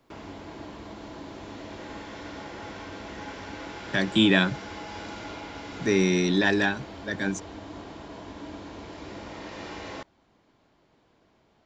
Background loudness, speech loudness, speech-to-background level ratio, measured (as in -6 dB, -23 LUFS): -40.0 LUFS, -24.0 LUFS, 16.0 dB